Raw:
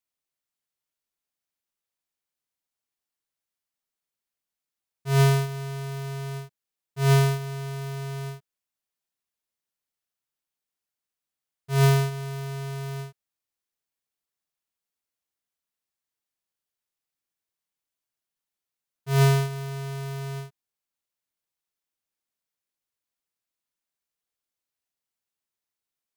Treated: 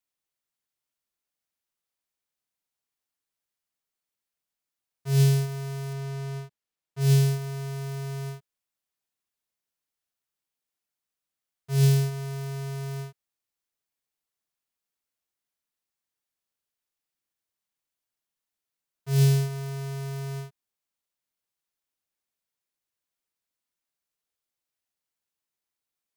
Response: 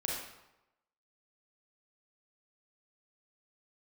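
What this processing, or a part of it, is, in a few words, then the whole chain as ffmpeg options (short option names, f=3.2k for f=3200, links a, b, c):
one-band saturation: -filter_complex "[0:a]acrossover=split=350|2800[a][b][c];[b]asoftclip=type=tanh:threshold=-37.5dB[d];[a][d][c]amix=inputs=3:normalize=0,asettb=1/sr,asplit=3[e][f][g];[e]atrim=end=5.934[h];[f]atrim=start=5.93:end=7.01,asetpts=PTS-STARTPTS,afade=t=in:d=0.004:c=qsin,afade=t=out:st=1.076:d=0.004:c=qsin,highshelf=f=8.4k:g=-8.5[i];[g]atrim=start=7.006[j];[h][i]acrossfade=d=0.004:c1=hsin:c2=qsin[k];[k][j]acrossfade=d=0.004:c1=qsin:c2=hsin"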